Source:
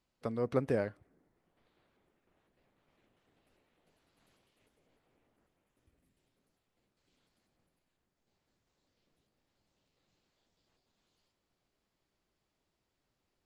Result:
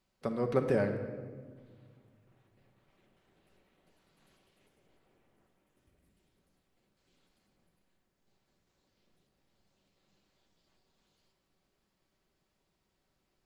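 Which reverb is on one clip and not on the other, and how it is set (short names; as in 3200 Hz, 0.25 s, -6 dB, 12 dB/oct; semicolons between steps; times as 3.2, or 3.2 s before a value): shoebox room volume 2100 m³, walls mixed, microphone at 1.1 m; gain +2 dB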